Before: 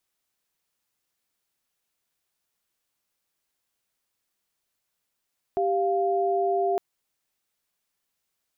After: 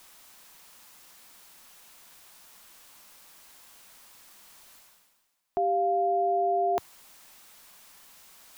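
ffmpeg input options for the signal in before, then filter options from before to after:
-f lavfi -i "aevalsrc='0.0631*(sin(2*PI*392*t)+sin(2*PI*698.46*t))':duration=1.21:sample_rate=44100"
-af "equalizer=frequency=100:width_type=o:width=0.67:gain=-11,equalizer=frequency=400:width_type=o:width=0.67:gain=-4,equalizer=frequency=1000:width_type=o:width=0.67:gain=4,areverse,acompressor=mode=upward:threshold=-32dB:ratio=2.5,areverse"

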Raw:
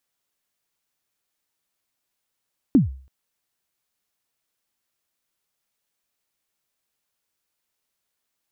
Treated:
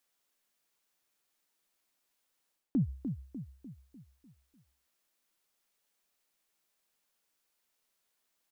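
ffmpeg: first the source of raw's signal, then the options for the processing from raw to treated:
-f lavfi -i "aevalsrc='0.398*pow(10,-3*t/0.44)*sin(2*PI*(310*0.141/log(66/310)*(exp(log(66/310)*min(t,0.141)/0.141)-1)+66*max(t-0.141,0)))':duration=0.33:sample_rate=44100"
-filter_complex "[0:a]equalizer=frequency=93:width=1.4:gain=-13.5,areverse,acompressor=threshold=-27dB:ratio=12,areverse,asplit=2[link_01][link_02];[link_02]adelay=298,lowpass=frequency=860:poles=1,volume=-7dB,asplit=2[link_03][link_04];[link_04]adelay=298,lowpass=frequency=860:poles=1,volume=0.51,asplit=2[link_05][link_06];[link_06]adelay=298,lowpass=frequency=860:poles=1,volume=0.51,asplit=2[link_07][link_08];[link_08]adelay=298,lowpass=frequency=860:poles=1,volume=0.51,asplit=2[link_09][link_10];[link_10]adelay=298,lowpass=frequency=860:poles=1,volume=0.51,asplit=2[link_11][link_12];[link_12]adelay=298,lowpass=frequency=860:poles=1,volume=0.51[link_13];[link_01][link_03][link_05][link_07][link_09][link_11][link_13]amix=inputs=7:normalize=0"

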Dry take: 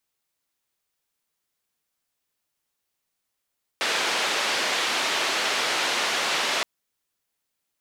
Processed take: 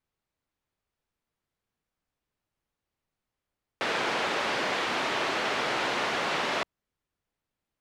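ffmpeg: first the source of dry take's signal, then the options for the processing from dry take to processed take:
-f lavfi -i "anoisesrc=color=white:duration=2.82:sample_rate=44100:seed=1,highpass=frequency=370,lowpass=frequency=3800,volume=-12.5dB"
-af "lowpass=frequency=1500:poles=1,lowshelf=frequency=160:gain=11"

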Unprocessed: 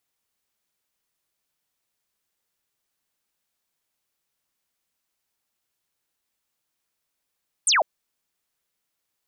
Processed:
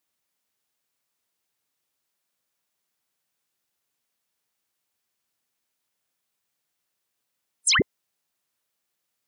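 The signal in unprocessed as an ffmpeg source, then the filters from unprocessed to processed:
-f lavfi -i "aevalsrc='0.158*clip(t/0.002,0,1)*clip((0.15-t)/0.002,0,1)*sin(2*PI*9700*0.15/log(550/9700)*(exp(log(550/9700)*t/0.15)-1))':duration=0.15:sample_rate=44100"
-af "afftfilt=real='real(if(between(b,1,1008),(2*floor((b-1)/48)+1)*48-b,b),0)':imag='imag(if(between(b,1,1008),(2*floor((b-1)/48)+1)*48-b,b),0)*if(between(b,1,1008),-1,1)':win_size=2048:overlap=0.75,highpass=85"

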